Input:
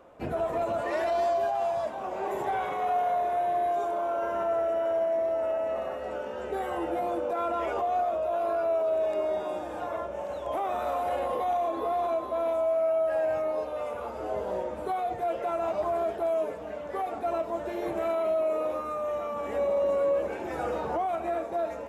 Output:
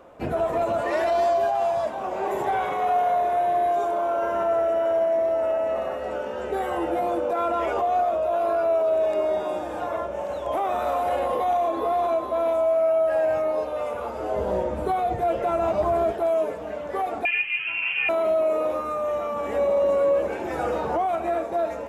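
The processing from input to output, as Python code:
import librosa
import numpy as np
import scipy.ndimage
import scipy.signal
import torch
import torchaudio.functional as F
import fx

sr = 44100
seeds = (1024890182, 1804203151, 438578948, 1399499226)

y = fx.low_shelf(x, sr, hz=200.0, db=11.0, at=(14.38, 16.12))
y = fx.freq_invert(y, sr, carrier_hz=3100, at=(17.25, 18.09))
y = y * 10.0 ** (5.0 / 20.0)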